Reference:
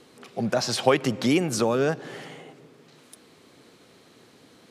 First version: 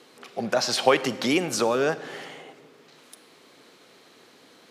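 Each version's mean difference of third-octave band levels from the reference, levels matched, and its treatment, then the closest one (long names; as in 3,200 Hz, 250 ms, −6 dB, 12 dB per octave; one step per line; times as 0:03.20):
3.0 dB: high-pass filter 460 Hz 6 dB per octave
parametric band 9,000 Hz −3.5 dB 0.8 octaves
four-comb reverb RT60 0.88 s, combs from 32 ms, DRR 15.5 dB
level +3 dB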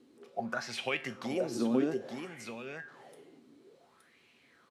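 6.0 dB: tuned comb filter 77 Hz, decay 0.38 s, harmonics odd, mix 70%
single-tap delay 870 ms −5 dB
auto-filter bell 0.58 Hz 270–2,600 Hz +18 dB
level −9 dB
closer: first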